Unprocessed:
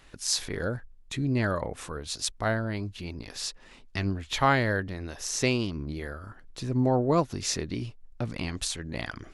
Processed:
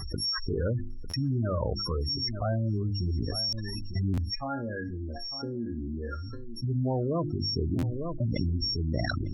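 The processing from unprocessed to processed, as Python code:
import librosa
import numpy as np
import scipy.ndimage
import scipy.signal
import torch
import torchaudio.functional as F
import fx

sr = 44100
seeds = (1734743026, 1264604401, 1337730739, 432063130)

y = np.r_[np.sort(x[:len(x) // 8 * 8].reshape(-1, 8), axis=1).ravel(), x[len(x) // 8 * 8:]]
y = np.clip(10.0 ** (17.5 / 20.0) * y, -1.0, 1.0) / 10.0 ** (17.5 / 20.0)
y = fx.env_lowpass_down(y, sr, base_hz=1800.0, full_db=-21.5)
y = fx.spec_gate(y, sr, threshold_db=-10, keep='strong')
y = fx.low_shelf(y, sr, hz=150.0, db=-5.5)
y = fx.hum_notches(y, sr, base_hz=50, count=7)
y = y + 10.0 ** (-23.5 / 20.0) * np.pad(y, (int(901 * sr / 1000.0), 0))[:len(y)]
y = fx.rider(y, sr, range_db=4, speed_s=0.5)
y = fx.peak_eq(y, sr, hz=80.0, db=11.5, octaves=1.4)
y = fx.resonator_bank(y, sr, root=58, chord='minor', decay_s=0.21, at=(4.34, 6.62), fade=0.02)
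y = fx.buffer_glitch(y, sr, at_s=(1.09, 3.48, 4.13, 7.78), block=512, repeats=3)
y = fx.env_flatten(y, sr, amount_pct=70)
y = y * 10.0 ** (-4.0 / 20.0)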